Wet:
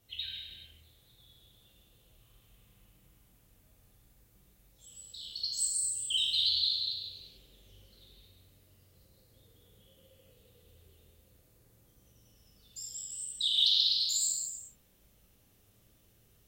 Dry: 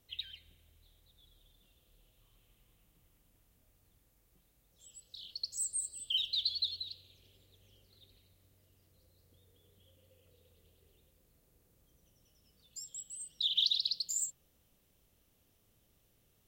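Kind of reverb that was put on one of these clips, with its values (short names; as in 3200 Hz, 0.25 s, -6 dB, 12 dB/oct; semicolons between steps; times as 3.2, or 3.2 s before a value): non-linear reverb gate 0.47 s falling, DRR -4 dB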